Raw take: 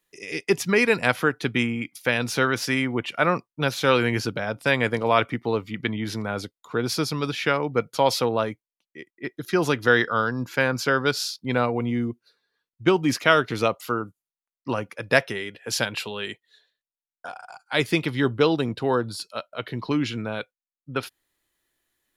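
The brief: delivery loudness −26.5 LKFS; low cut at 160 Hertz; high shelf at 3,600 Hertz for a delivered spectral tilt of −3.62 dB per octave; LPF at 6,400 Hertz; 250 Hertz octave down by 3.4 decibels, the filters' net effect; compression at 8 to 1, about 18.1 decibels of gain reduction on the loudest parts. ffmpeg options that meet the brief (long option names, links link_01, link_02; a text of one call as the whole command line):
ffmpeg -i in.wav -af "highpass=160,lowpass=6400,equalizer=frequency=250:width_type=o:gain=-3.5,highshelf=frequency=3600:gain=4.5,acompressor=threshold=-33dB:ratio=8,volume=11dB" out.wav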